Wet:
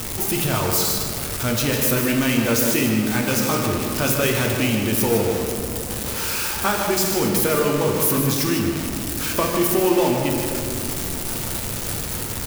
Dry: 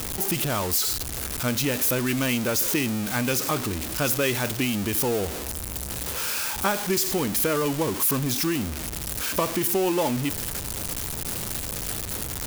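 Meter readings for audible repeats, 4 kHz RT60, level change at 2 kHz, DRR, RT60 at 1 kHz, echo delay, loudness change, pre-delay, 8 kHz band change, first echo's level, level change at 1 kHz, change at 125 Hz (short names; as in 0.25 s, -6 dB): 1, 1.3 s, +4.5 dB, -0.5 dB, 2.3 s, 0.153 s, +4.5 dB, 8 ms, +3.0 dB, -8.0 dB, +5.0 dB, +5.5 dB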